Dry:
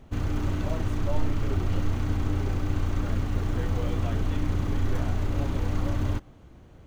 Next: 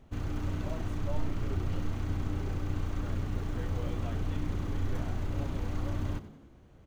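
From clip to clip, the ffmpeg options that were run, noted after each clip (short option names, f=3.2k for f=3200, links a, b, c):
-filter_complex "[0:a]asplit=5[a][b][c][d][e];[b]adelay=94,afreqshift=62,volume=-15dB[f];[c]adelay=188,afreqshift=124,volume=-21.4dB[g];[d]adelay=282,afreqshift=186,volume=-27.8dB[h];[e]adelay=376,afreqshift=248,volume=-34.1dB[i];[a][f][g][h][i]amix=inputs=5:normalize=0,volume=-6.5dB"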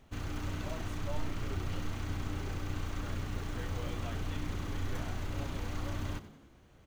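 -af "tiltshelf=f=970:g=-4.5"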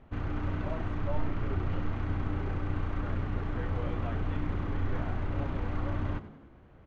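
-af "lowpass=1.8k,volume=5dB"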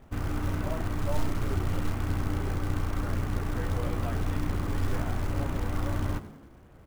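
-af "acrusher=bits=5:mode=log:mix=0:aa=0.000001,volume=2.5dB"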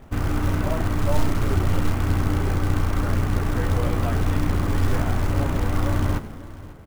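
-af "aecho=1:1:544:0.126,volume=7.5dB"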